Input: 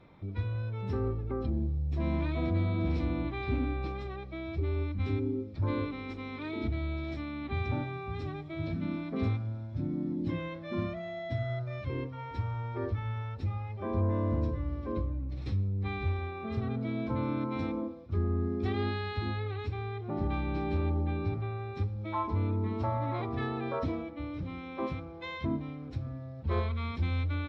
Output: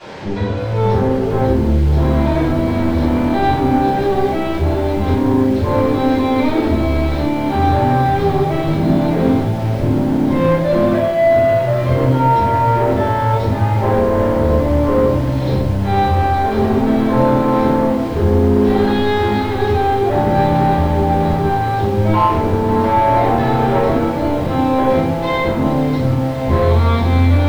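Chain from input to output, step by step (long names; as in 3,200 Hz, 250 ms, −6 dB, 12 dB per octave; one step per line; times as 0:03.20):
high-pass filter 71 Hz 12 dB per octave
flat-topped bell 1,800 Hz −10.5 dB
mains-hum notches 60/120/180/240/300/360/420/480 Hz
brickwall limiter −29.5 dBFS, peak gain reduction 10.5 dB
bit-depth reduction 10 bits, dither triangular
mid-hump overdrive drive 23 dB, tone 2,600 Hz, clips at −26.5 dBFS
high-frequency loss of the air 150 metres
convolution reverb RT60 0.75 s, pre-delay 3 ms, DRR −12.5 dB
feedback echo at a low word length 539 ms, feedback 80%, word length 6 bits, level −14.5 dB
level +2.5 dB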